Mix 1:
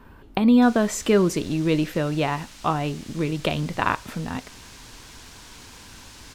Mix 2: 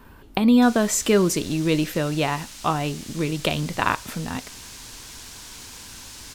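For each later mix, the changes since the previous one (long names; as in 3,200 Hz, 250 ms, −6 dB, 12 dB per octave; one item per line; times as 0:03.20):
master: add high-shelf EQ 4,300 Hz +9.5 dB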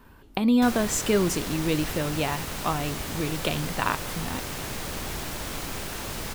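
speech −4.5 dB
background: remove resonant band-pass 6,100 Hz, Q 0.97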